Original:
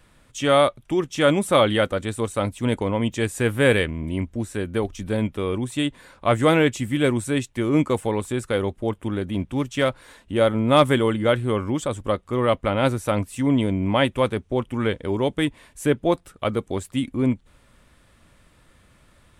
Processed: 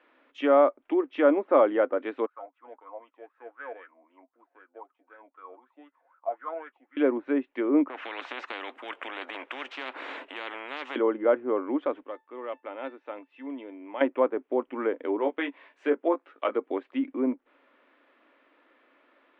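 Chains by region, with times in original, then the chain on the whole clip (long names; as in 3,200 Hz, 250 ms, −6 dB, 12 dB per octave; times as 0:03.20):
0:02.26–0:06.97: notch comb filter 200 Hz + LFO wah 3.9 Hz 660–1,400 Hz, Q 11
0:07.88–0:10.96: high shelf with overshoot 6,900 Hz +13 dB, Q 1.5 + downward compressor 2 to 1, threshold −21 dBFS + every bin compressed towards the loudest bin 10 to 1
0:12.04–0:14.01: band-pass filter 200–4,100 Hz + tuned comb filter 890 Hz, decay 0.25 s, mix 80% + one half of a high-frequency compander encoder only
0:15.19–0:16.55: low-shelf EQ 350 Hz −9.5 dB + double-tracking delay 18 ms −5 dB
whole clip: low-pass filter 2,800 Hz 24 dB per octave; treble cut that deepens with the level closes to 1,200 Hz, closed at −18.5 dBFS; elliptic high-pass filter 270 Hz, stop band 40 dB; level −1.5 dB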